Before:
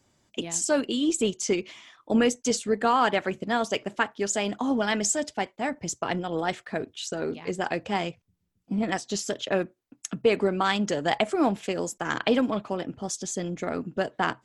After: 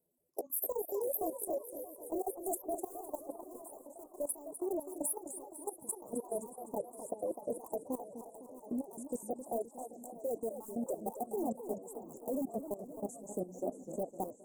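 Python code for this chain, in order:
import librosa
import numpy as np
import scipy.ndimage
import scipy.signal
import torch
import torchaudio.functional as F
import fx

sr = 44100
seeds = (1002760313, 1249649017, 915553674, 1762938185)

p1 = fx.pitch_glide(x, sr, semitones=9.0, runs='ending unshifted')
p2 = (np.mod(10.0 ** (20.0 / 20.0) * p1 + 1.0, 2.0) - 1.0) / 10.0 ** (20.0 / 20.0)
p3 = p1 + (p2 * librosa.db_to_amplitude(-7.5))
p4 = fx.rider(p3, sr, range_db=4, speed_s=2.0)
p5 = scipy.signal.sosfilt(scipy.signal.cheby2(4, 70, [1700.0, 3400.0], 'bandstop', fs=sr, output='sos'), p4)
p6 = fx.echo_feedback(p5, sr, ms=627, feedback_pct=53, wet_db=-11)
p7 = fx.dereverb_blind(p6, sr, rt60_s=0.6)
p8 = fx.low_shelf(p7, sr, hz=280.0, db=-11.5)
p9 = fx.dereverb_blind(p8, sr, rt60_s=0.52)
p10 = fx.peak_eq(p9, sr, hz=4200.0, db=-14.5, octaves=1.4)
p11 = p10 + fx.echo_stepped(p10, sr, ms=260, hz=1200.0, octaves=0.7, feedback_pct=70, wet_db=-8, dry=0)
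p12 = fx.level_steps(p11, sr, step_db=16)
p13 = fx.echo_warbled(p12, sr, ms=258, feedback_pct=50, rate_hz=2.8, cents=188, wet_db=-10.0)
y = p13 * librosa.db_to_amplitude(-2.5)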